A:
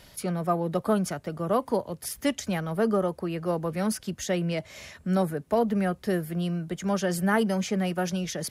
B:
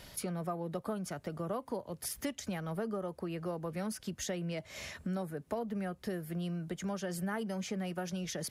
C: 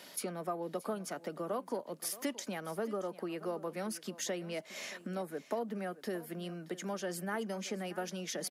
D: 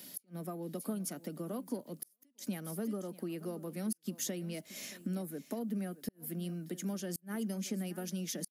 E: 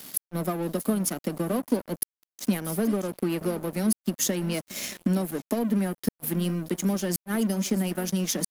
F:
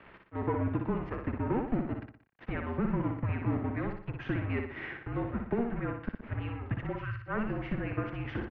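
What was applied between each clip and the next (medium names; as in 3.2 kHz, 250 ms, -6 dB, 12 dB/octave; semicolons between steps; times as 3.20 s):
compression 4:1, threshold -36 dBFS, peak gain reduction 15 dB
high-pass 220 Hz 24 dB/octave; delay 626 ms -17 dB; trim +1 dB
FFT filter 270 Hz 0 dB, 400 Hz -9 dB, 980 Hz -16 dB, 7.1 kHz -3 dB, 14 kHz +7 dB; inverted gate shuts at -30 dBFS, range -38 dB; trim +5 dB
crossover distortion -50 dBFS; in parallel at -1.5 dB: gain riding 0.5 s; on the sum: trim +8.5 dB
spectral replace 6.95–7.17 s, 380–1200 Hz after; mistuned SSB -240 Hz 350–2500 Hz; feedback delay 60 ms, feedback 43%, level -5 dB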